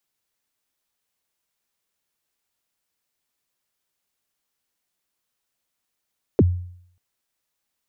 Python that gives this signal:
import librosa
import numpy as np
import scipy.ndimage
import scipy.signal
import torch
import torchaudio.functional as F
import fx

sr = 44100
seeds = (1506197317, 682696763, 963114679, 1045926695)

y = fx.drum_kick(sr, seeds[0], length_s=0.59, level_db=-9.0, start_hz=510.0, end_hz=89.0, sweep_ms=37.0, decay_s=0.64, click=False)